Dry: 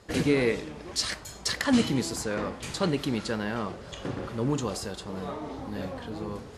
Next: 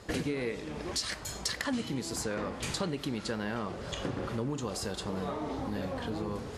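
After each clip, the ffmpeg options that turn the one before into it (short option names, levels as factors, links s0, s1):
-af "acompressor=threshold=0.0178:ratio=6,volume=1.58"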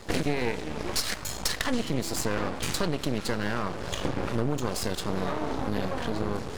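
-af "aeval=exprs='max(val(0),0)':c=same,volume=2.82"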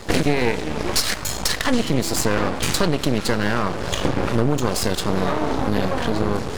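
-af "alimiter=level_in=3.55:limit=0.891:release=50:level=0:latency=1,volume=0.75"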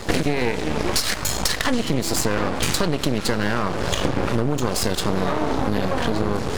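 -af "acompressor=threshold=0.0891:ratio=3,volume=1.58"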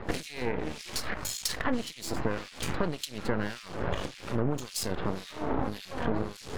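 -filter_complex "[0:a]acrossover=split=2400[s0][s1];[s0]aeval=exprs='val(0)*(1-1/2+1/2*cos(2*PI*1.8*n/s))':c=same[s2];[s1]aeval=exprs='val(0)*(1-1/2-1/2*cos(2*PI*1.8*n/s))':c=same[s3];[s2][s3]amix=inputs=2:normalize=0,volume=0.501"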